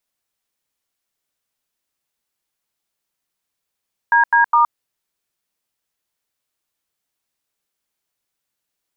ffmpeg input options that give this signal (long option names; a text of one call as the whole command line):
ffmpeg -f lavfi -i "aevalsrc='0.237*clip(min(mod(t,0.206),0.118-mod(t,0.206))/0.002,0,1)*(eq(floor(t/0.206),0)*(sin(2*PI*941*mod(t,0.206))+sin(2*PI*1633*mod(t,0.206)))+eq(floor(t/0.206),1)*(sin(2*PI*941*mod(t,0.206))+sin(2*PI*1633*mod(t,0.206)))+eq(floor(t/0.206),2)*(sin(2*PI*941*mod(t,0.206))+sin(2*PI*1209*mod(t,0.206))))':duration=0.618:sample_rate=44100" out.wav